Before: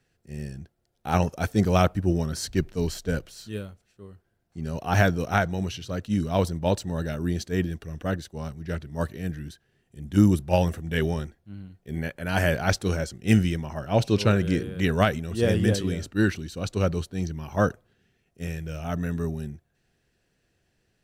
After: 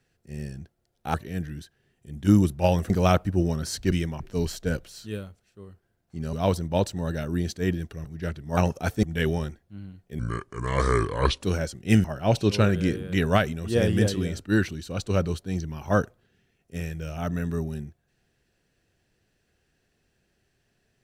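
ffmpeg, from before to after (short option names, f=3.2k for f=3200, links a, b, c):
-filter_complex "[0:a]asplit=12[a][b][c][d][e][f][g][h][i][j][k][l];[a]atrim=end=1.142[m];[b]atrim=start=9.028:end=10.792[n];[c]atrim=start=1.598:end=2.622[o];[d]atrim=start=13.428:end=13.712[p];[e]atrim=start=2.618:end=4.752[q];[f]atrim=start=6.238:end=7.962[r];[g]atrim=start=8.508:end=9.032[s];[h]atrim=start=1.138:end=1.602[t];[i]atrim=start=10.788:end=11.954[u];[j]atrim=start=11.95:end=12.82,asetpts=PTS-STARTPTS,asetrate=30870,aresample=44100[v];[k]atrim=start=12.816:end=13.432[w];[l]atrim=start=13.708[x];[m][n]acrossfade=d=0.004:c1=hsin:c2=hsin[y];[y][o]acrossfade=d=0.004:c1=hsin:c2=hsin[z];[z][p]acrossfade=d=0.004:c1=hsin:c2=hsin[aa];[aa][q]acrossfade=d=0.004:c1=hsin:c2=hsin[ab];[ab][r]acrossfade=d=0.004:c1=hsin:c2=hsin[ac];[ac][s]acrossfade=d=0.004:c1=hsin:c2=hsin[ad];[ad][t]acrossfade=d=0.004:c1=hsin:c2=hsin[ae];[ae][u]acrossfade=d=0.004:c1=hsin:c2=hsin[af];[af][v]acrossfade=d=0.004:c1=hsin:c2=hsin[ag];[ag][w]acrossfade=d=0.004:c1=hsin:c2=hsin[ah];[ah][x]acrossfade=d=0.004:c1=hsin:c2=hsin"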